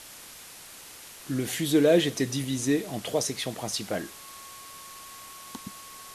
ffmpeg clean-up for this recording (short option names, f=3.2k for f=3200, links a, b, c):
-af "bandreject=f=1.1k:w=30,afwtdn=0.0063"